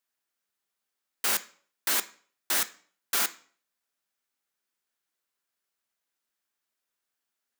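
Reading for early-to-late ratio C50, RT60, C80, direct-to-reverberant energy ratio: 17.5 dB, 0.50 s, 22.0 dB, 11.0 dB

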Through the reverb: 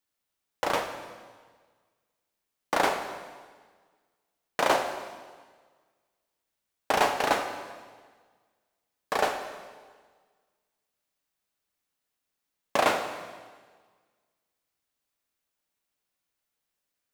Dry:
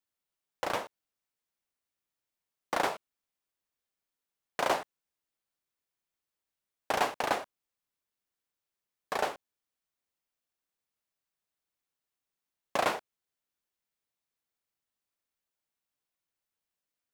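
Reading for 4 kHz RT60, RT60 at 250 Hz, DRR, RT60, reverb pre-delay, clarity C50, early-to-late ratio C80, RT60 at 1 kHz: 1.5 s, 1.6 s, 5.5 dB, 1.5 s, 3 ms, 7.5 dB, 9.0 dB, 1.5 s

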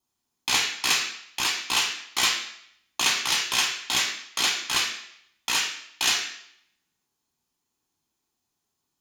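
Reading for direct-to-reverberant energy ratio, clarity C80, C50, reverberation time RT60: 1.5 dB, 8.5 dB, 6.0 dB, 0.70 s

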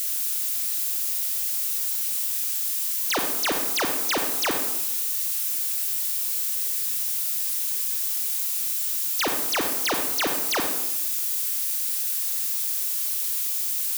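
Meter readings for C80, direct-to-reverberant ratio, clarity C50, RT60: 7.5 dB, 3.0 dB, 5.0 dB, 0.85 s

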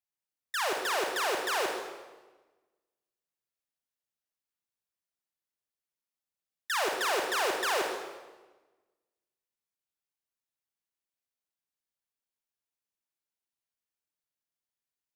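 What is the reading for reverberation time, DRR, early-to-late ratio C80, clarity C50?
1.3 s, 1.5 dB, 5.5 dB, 3.0 dB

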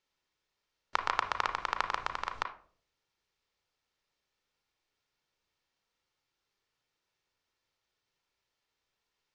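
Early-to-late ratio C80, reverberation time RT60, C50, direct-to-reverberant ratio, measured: 17.0 dB, 0.50 s, 12.0 dB, 6.5 dB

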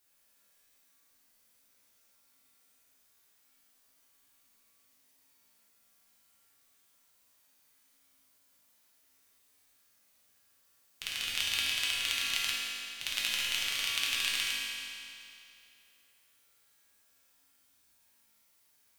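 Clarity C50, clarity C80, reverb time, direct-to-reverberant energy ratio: -2.5 dB, -0.5 dB, 2.6 s, -6.5 dB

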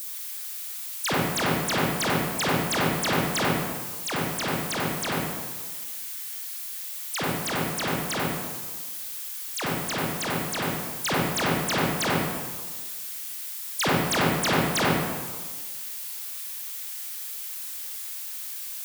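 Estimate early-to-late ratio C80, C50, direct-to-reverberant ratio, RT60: 0.5 dB, -3.5 dB, -6.0 dB, 1.4 s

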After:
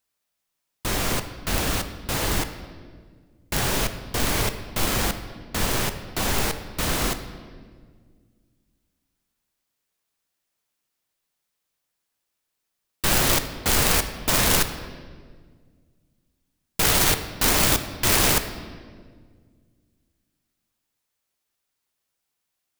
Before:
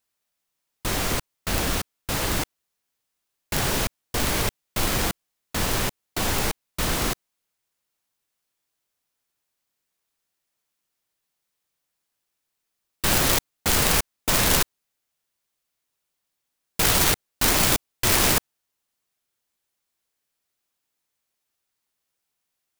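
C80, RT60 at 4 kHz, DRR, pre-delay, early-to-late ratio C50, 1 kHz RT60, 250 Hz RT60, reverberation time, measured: 12.0 dB, 1.3 s, 9.0 dB, 14 ms, 10.5 dB, 1.5 s, 2.4 s, 1.8 s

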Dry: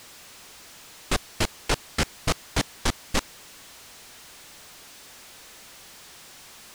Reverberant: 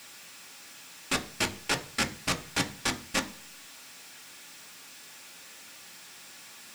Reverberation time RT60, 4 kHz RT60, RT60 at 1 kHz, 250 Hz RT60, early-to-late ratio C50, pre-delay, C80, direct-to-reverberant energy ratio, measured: 0.40 s, 0.50 s, 0.40 s, 0.55 s, 16.5 dB, 3 ms, 21.0 dB, 5.0 dB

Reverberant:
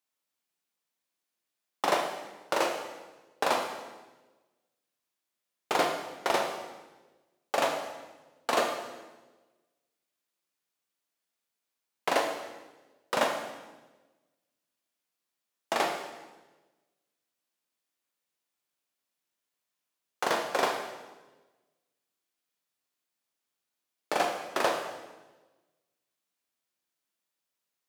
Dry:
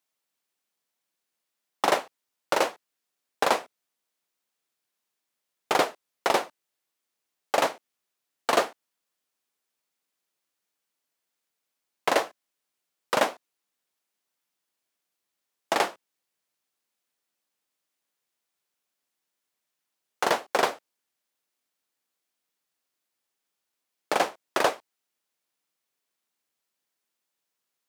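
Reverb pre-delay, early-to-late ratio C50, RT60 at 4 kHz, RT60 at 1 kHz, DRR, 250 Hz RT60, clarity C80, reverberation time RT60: 14 ms, 5.0 dB, 1.1 s, 1.1 s, 2.0 dB, 1.4 s, 7.5 dB, 1.2 s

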